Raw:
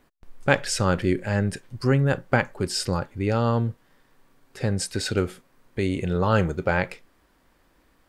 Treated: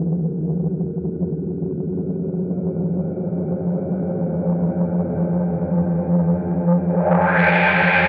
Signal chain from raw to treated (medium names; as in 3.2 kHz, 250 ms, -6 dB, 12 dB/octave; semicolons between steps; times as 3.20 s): cabinet simulation 150–5400 Hz, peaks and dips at 170 Hz +9 dB, 300 Hz -10 dB, 800 Hz +4 dB, 2.2 kHz +5 dB, 3.7 kHz +6 dB; Paulstretch 29×, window 0.25 s, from 6.52 s; low-pass sweep 300 Hz -> 2.9 kHz, 6.87–7.55 s; delay 412 ms -6 dB; transformer saturation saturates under 530 Hz; trim +3.5 dB